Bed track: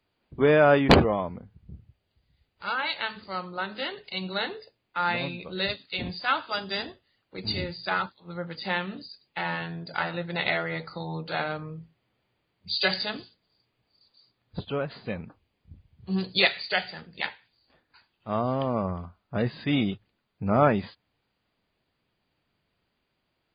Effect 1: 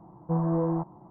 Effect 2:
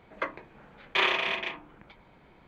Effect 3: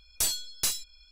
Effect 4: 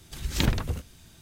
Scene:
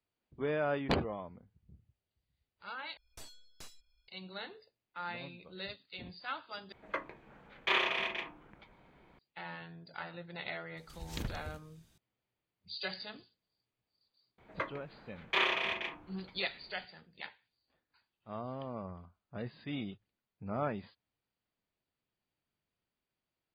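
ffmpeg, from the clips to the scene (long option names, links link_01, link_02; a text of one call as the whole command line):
ffmpeg -i bed.wav -i cue0.wav -i cue1.wav -i cue2.wav -i cue3.wav -filter_complex "[2:a]asplit=2[link_01][link_02];[0:a]volume=-14.5dB[link_03];[3:a]lowpass=frequency=1400:poles=1[link_04];[link_03]asplit=3[link_05][link_06][link_07];[link_05]atrim=end=2.974[link_08];[link_04]atrim=end=1.11,asetpts=PTS-STARTPTS,volume=-13.5dB[link_09];[link_06]atrim=start=4.076:end=6.724[link_10];[link_01]atrim=end=2.47,asetpts=PTS-STARTPTS,volume=-5dB[link_11];[link_07]atrim=start=9.186[link_12];[4:a]atrim=end=1.21,asetpts=PTS-STARTPTS,volume=-15dB,afade=type=in:duration=0.004:curve=hsin,afade=type=out:start_time=1.206:duration=0.004:curve=hsin,adelay=10770[link_13];[link_02]atrim=end=2.47,asetpts=PTS-STARTPTS,volume=-5dB,afade=type=in:duration=0.004:curve=hsin,afade=type=out:start_time=2.466:duration=0.004:curve=hsin,adelay=14380[link_14];[link_08][link_09]acrossfade=duration=0.004:curve1=hsin:curve2=hsin[link_15];[link_15][link_10]acrossfade=duration=0.004:curve1=hsin:curve2=hsin[link_16];[link_16][link_11]acrossfade=duration=0.004:curve1=hsin:curve2=hsin[link_17];[link_17][link_12]acrossfade=duration=0.004:curve1=hsin:curve2=hsin[link_18];[link_18][link_13][link_14]amix=inputs=3:normalize=0" out.wav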